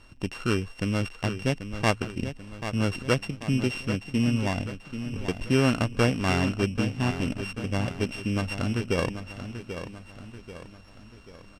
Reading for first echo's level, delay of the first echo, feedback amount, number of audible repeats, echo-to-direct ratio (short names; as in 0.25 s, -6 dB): -10.0 dB, 0.787 s, 47%, 4, -9.0 dB